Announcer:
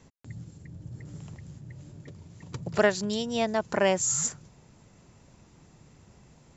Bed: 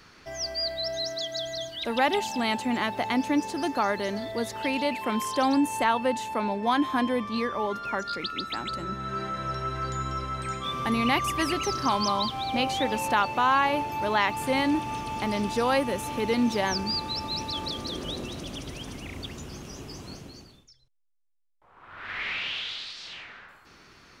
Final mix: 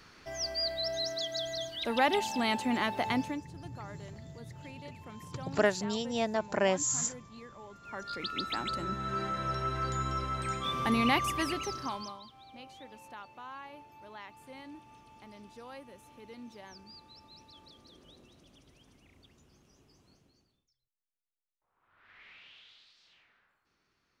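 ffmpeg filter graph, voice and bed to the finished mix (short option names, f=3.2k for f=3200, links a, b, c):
-filter_complex "[0:a]adelay=2800,volume=-4dB[a];[1:a]volume=16dB,afade=t=out:st=3.09:d=0.34:silence=0.125893,afade=t=in:st=7.8:d=0.64:silence=0.112202,afade=t=out:st=11.02:d=1.18:silence=0.0841395[b];[a][b]amix=inputs=2:normalize=0"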